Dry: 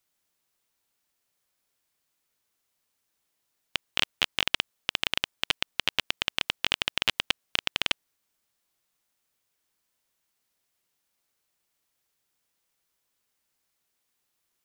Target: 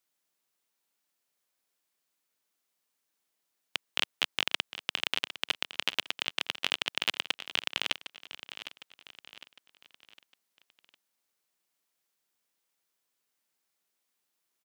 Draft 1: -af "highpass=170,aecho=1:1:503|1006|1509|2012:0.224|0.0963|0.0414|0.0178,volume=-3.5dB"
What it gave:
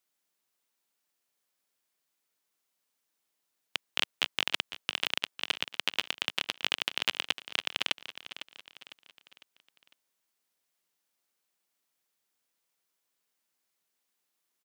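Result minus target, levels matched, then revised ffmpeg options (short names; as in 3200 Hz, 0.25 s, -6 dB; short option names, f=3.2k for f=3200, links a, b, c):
echo 0.254 s early
-af "highpass=170,aecho=1:1:757|1514|2271|3028:0.224|0.0963|0.0414|0.0178,volume=-3.5dB"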